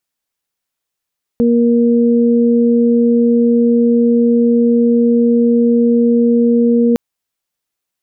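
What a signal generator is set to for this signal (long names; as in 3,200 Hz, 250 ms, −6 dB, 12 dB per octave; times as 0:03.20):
steady harmonic partials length 5.56 s, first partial 236 Hz, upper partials −4 dB, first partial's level −9.5 dB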